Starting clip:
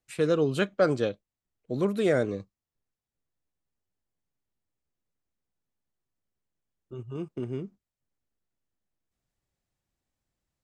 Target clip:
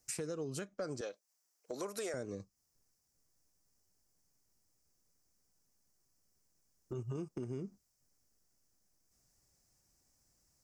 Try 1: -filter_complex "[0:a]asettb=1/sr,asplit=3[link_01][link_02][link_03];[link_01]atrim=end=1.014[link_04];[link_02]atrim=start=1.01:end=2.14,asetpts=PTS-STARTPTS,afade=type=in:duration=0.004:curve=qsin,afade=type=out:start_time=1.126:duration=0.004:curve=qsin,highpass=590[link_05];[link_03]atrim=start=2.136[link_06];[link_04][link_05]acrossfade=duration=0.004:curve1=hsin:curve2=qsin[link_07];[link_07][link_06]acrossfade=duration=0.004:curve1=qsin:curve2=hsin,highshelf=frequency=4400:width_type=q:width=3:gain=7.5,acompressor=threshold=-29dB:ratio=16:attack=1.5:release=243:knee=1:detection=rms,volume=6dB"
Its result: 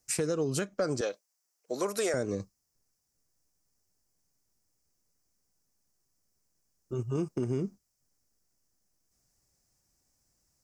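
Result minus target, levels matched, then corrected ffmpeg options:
downward compressor: peak gain reduction −10.5 dB
-filter_complex "[0:a]asettb=1/sr,asplit=3[link_01][link_02][link_03];[link_01]atrim=end=1.014[link_04];[link_02]atrim=start=1.01:end=2.14,asetpts=PTS-STARTPTS,afade=type=in:duration=0.004:curve=qsin,afade=type=out:start_time=1.126:duration=0.004:curve=qsin,highpass=590[link_05];[link_03]atrim=start=2.136[link_06];[link_04][link_05]acrossfade=duration=0.004:curve1=hsin:curve2=qsin[link_07];[link_07][link_06]acrossfade=duration=0.004:curve1=qsin:curve2=hsin,highshelf=frequency=4400:width_type=q:width=3:gain=7.5,acompressor=threshold=-40dB:ratio=16:attack=1.5:release=243:knee=1:detection=rms,volume=6dB"

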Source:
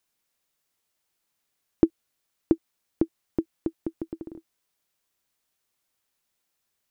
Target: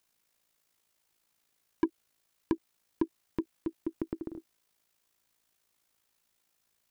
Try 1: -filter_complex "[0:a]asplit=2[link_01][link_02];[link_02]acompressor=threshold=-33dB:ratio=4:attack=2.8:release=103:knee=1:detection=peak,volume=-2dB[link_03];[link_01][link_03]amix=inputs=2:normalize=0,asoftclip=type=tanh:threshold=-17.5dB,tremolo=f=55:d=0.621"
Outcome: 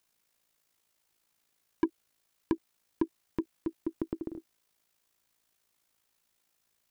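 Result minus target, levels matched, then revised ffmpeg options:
downward compressor: peak gain reduction −5 dB
-filter_complex "[0:a]asplit=2[link_01][link_02];[link_02]acompressor=threshold=-39.5dB:ratio=4:attack=2.8:release=103:knee=1:detection=peak,volume=-2dB[link_03];[link_01][link_03]amix=inputs=2:normalize=0,asoftclip=type=tanh:threshold=-17.5dB,tremolo=f=55:d=0.621"

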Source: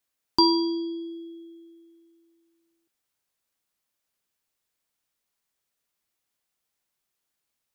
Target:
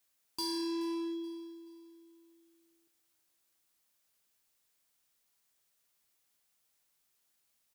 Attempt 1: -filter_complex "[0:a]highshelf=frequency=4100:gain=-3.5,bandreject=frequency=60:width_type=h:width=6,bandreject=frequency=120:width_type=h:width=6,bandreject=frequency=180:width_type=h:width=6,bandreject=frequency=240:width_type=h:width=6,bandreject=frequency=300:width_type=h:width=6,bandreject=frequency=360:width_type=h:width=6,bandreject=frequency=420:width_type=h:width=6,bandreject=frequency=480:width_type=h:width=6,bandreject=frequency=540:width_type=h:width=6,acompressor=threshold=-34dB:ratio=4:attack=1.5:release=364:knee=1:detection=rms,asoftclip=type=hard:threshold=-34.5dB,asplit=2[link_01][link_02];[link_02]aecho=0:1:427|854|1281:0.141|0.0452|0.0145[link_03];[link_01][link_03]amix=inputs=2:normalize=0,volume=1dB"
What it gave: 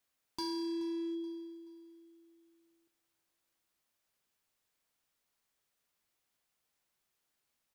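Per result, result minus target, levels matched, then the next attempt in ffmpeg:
downward compressor: peak gain reduction +4 dB; 4,000 Hz band −3.0 dB
-filter_complex "[0:a]highshelf=frequency=4100:gain=-3.5,bandreject=frequency=60:width_type=h:width=6,bandreject=frequency=120:width_type=h:width=6,bandreject=frequency=180:width_type=h:width=6,bandreject=frequency=240:width_type=h:width=6,bandreject=frequency=300:width_type=h:width=6,bandreject=frequency=360:width_type=h:width=6,bandreject=frequency=420:width_type=h:width=6,bandreject=frequency=480:width_type=h:width=6,bandreject=frequency=540:width_type=h:width=6,acompressor=threshold=-27dB:ratio=4:attack=1.5:release=364:knee=1:detection=rms,asoftclip=type=hard:threshold=-34.5dB,asplit=2[link_01][link_02];[link_02]aecho=0:1:427|854|1281:0.141|0.0452|0.0145[link_03];[link_01][link_03]amix=inputs=2:normalize=0,volume=1dB"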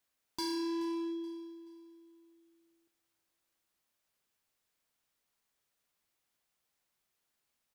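4,000 Hz band −3.0 dB
-filter_complex "[0:a]highshelf=frequency=4100:gain=5,bandreject=frequency=60:width_type=h:width=6,bandreject=frequency=120:width_type=h:width=6,bandreject=frequency=180:width_type=h:width=6,bandreject=frequency=240:width_type=h:width=6,bandreject=frequency=300:width_type=h:width=6,bandreject=frequency=360:width_type=h:width=6,bandreject=frequency=420:width_type=h:width=6,bandreject=frequency=480:width_type=h:width=6,bandreject=frequency=540:width_type=h:width=6,acompressor=threshold=-27dB:ratio=4:attack=1.5:release=364:knee=1:detection=rms,asoftclip=type=hard:threshold=-34.5dB,asplit=2[link_01][link_02];[link_02]aecho=0:1:427|854|1281:0.141|0.0452|0.0145[link_03];[link_01][link_03]amix=inputs=2:normalize=0,volume=1dB"

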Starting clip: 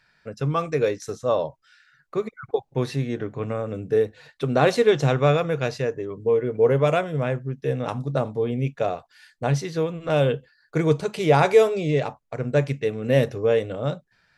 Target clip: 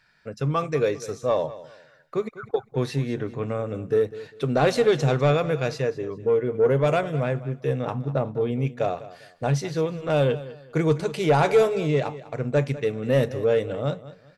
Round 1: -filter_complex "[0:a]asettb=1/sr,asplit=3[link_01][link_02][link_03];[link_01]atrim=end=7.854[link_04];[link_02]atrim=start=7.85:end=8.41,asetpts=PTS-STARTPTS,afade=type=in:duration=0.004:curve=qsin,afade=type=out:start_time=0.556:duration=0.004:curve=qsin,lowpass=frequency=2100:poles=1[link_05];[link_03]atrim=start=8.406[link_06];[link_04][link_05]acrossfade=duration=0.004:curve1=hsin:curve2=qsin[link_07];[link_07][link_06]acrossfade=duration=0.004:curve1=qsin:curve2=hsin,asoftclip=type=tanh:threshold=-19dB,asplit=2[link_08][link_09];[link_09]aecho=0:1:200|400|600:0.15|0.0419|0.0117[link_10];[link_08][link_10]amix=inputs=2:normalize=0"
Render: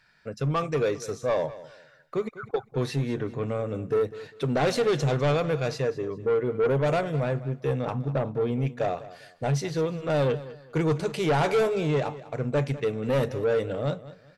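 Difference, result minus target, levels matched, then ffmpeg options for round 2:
soft clipping: distortion +9 dB
-filter_complex "[0:a]asettb=1/sr,asplit=3[link_01][link_02][link_03];[link_01]atrim=end=7.854[link_04];[link_02]atrim=start=7.85:end=8.41,asetpts=PTS-STARTPTS,afade=type=in:duration=0.004:curve=qsin,afade=type=out:start_time=0.556:duration=0.004:curve=qsin,lowpass=frequency=2100:poles=1[link_05];[link_03]atrim=start=8.406[link_06];[link_04][link_05]acrossfade=duration=0.004:curve1=hsin:curve2=qsin[link_07];[link_07][link_06]acrossfade=duration=0.004:curve1=qsin:curve2=hsin,asoftclip=type=tanh:threshold=-10.5dB,asplit=2[link_08][link_09];[link_09]aecho=0:1:200|400|600:0.15|0.0419|0.0117[link_10];[link_08][link_10]amix=inputs=2:normalize=0"

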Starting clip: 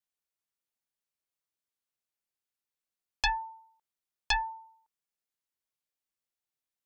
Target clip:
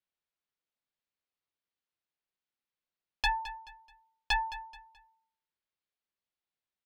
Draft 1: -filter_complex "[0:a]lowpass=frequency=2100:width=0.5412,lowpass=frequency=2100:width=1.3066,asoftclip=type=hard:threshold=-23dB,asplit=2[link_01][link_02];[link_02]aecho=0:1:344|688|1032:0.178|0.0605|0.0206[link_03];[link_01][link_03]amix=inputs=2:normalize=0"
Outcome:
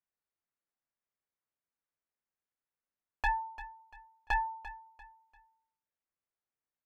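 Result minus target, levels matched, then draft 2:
4,000 Hz band −12.5 dB; echo 129 ms late
-filter_complex "[0:a]lowpass=frequency=4500:width=0.5412,lowpass=frequency=4500:width=1.3066,asoftclip=type=hard:threshold=-23dB,asplit=2[link_01][link_02];[link_02]aecho=0:1:215|430|645:0.178|0.0605|0.0206[link_03];[link_01][link_03]amix=inputs=2:normalize=0"

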